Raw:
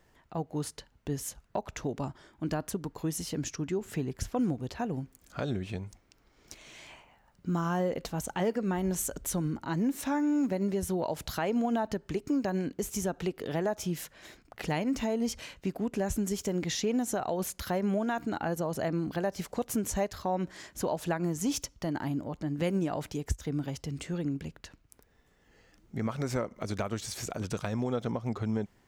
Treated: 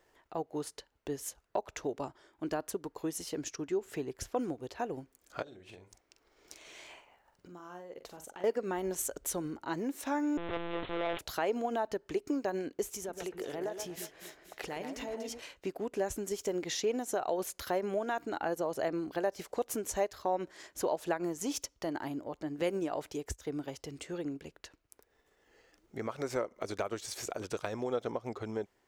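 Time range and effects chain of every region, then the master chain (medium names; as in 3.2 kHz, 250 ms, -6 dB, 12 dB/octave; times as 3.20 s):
5.42–8.44 s: compression 5:1, threshold -43 dBFS + doubling 45 ms -7.5 dB
10.37–11.19 s: one-bit comparator + monotone LPC vocoder at 8 kHz 170 Hz + tape noise reduction on one side only decoder only
12.89–15.42 s: compression 5:1, threshold -33 dBFS + echo whose repeats swap between lows and highs 120 ms, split 1.9 kHz, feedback 63%, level -5 dB
whole clip: transient shaper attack +1 dB, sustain -4 dB; resonant low shelf 270 Hz -9 dB, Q 1.5; trim -2 dB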